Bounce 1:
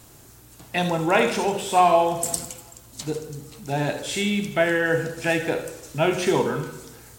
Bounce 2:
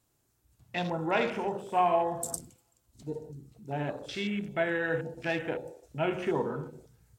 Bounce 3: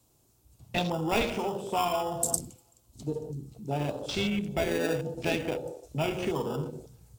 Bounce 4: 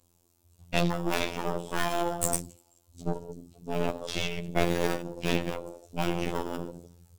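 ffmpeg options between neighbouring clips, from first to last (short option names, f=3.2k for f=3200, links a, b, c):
-af "afwtdn=0.0251,volume=-8.5dB"
-filter_complex "[0:a]acrossover=split=110|1300|2400[a][b][c][d];[b]acompressor=threshold=-36dB:ratio=6[e];[c]acrusher=samples=21:mix=1:aa=0.000001[f];[a][e][f][d]amix=inputs=4:normalize=0,volume=7.5dB"
-af "aphaser=in_gain=1:out_gain=1:delay=3.4:decay=0.37:speed=1.3:type=sinusoidal,aeval=exprs='0.355*(cos(1*acos(clip(val(0)/0.355,-1,1)))-cos(1*PI/2))+0.0562*(cos(8*acos(clip(val(0)/0.355,-1,1)))-cos(8*PI/2))':c=same,afftfilt=real='hypot(re,im)*cos(PI*b)':imag='0':win_size=2048:overlap=0.75,volume=1dB"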